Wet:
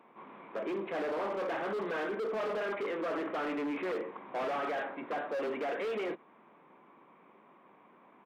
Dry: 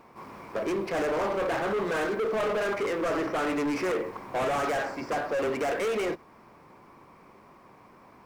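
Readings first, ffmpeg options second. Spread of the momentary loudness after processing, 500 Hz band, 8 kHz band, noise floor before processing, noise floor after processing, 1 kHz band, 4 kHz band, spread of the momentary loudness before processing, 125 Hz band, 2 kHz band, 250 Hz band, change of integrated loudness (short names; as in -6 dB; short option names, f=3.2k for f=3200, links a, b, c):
5 LU, -6.5 dB, under -15 dB, -55 dBFS, -61 dBFS, -6.5 dB, -8.0 dB, 5 LU, -12.0 dB, -6.5 dB, -6.5 dB, -6.5 dB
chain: -af "highpass=f=180:w=0.5412,highpass=f=180:w=1.3066,aresample=8000,aresample=44100,asoftclip=type=hard:threshold=-23dB,volume=-6dB"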